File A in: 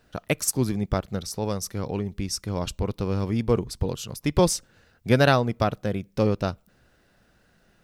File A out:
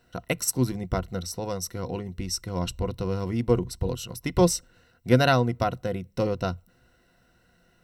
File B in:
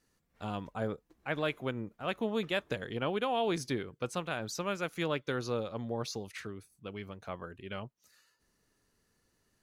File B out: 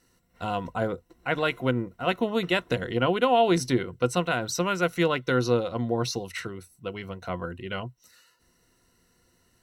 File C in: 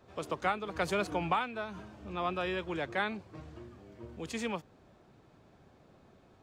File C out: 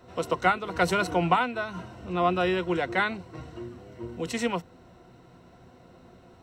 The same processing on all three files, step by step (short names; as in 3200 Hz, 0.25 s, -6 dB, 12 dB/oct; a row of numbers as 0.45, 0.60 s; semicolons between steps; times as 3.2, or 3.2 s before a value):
ripple EQ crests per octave 2, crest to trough 10 dB; match loudness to -27 LUFS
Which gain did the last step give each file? -2.5, +8.0, +6.5 dB